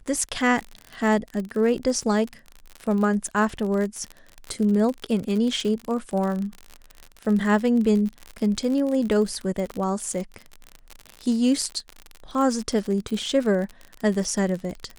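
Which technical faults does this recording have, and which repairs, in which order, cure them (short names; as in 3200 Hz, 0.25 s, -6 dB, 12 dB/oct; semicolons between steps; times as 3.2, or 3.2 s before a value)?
crackle 53/s -28 dBFS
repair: de-click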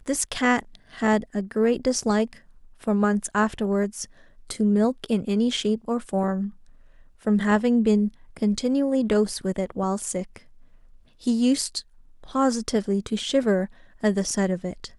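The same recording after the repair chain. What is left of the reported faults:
none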